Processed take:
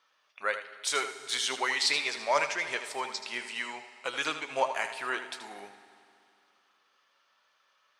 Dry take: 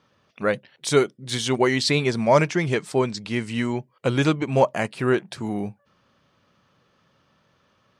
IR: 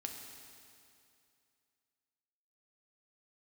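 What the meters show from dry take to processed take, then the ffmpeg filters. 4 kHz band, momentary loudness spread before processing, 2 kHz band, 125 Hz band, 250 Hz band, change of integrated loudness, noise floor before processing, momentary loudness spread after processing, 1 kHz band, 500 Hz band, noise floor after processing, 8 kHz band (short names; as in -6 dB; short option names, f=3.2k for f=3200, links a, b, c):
-2.0 dB, 9 LU, -2.5 dB, -35.0 dB, -23.5 dB, -8.0 dB, -65 dBFS, 12 LU, -5.5 dB, -14.0 dB, -71 dBFS, -2.5 dB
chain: -filter_complex "[0:a]highpass=1k,flanger=delay=6:depth=3:regen=67:speed=0.49:shape=triangular,asplit=2[a][b];[1:a]atrim=start_sample=2205,adelay=79[c];[b][c]afir=irnorm=-1:irlink=0,volume=-6.5dB[d];[a][d]amix=inputs=2:normalize=0,volume=1.5dB"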